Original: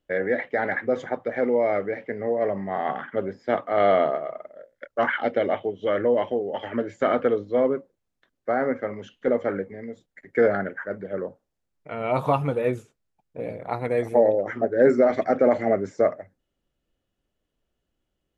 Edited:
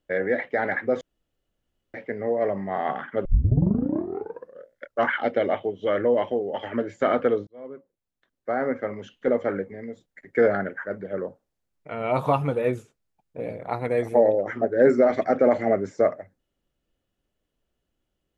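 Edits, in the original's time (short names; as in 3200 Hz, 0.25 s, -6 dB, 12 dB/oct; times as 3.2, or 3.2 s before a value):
1.01–1.94 room tone
3.25 tape start 1.45 s
7.47–8.85 fade in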